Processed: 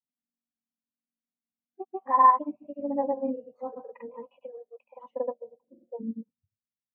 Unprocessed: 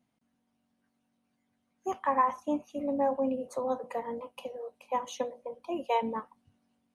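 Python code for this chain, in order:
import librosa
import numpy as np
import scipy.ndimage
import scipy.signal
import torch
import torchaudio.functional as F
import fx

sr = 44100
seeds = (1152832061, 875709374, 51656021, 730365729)

y = fx.filter_sweep_lowpass(x, sr, from_hz=2400.0, to_hz=120.0, start_s=4.86, end_s=6.51, q=1.3)
y = fx.granulator(y, sr, seeds[0], grain_ms=100.0, per_s=20.0, spray_ms=100.0, spread_st=0)
y = fx.spectral_expand(y, sr, expansion=1.5)
y = y * 10.0 ** (5.5 / 20.0)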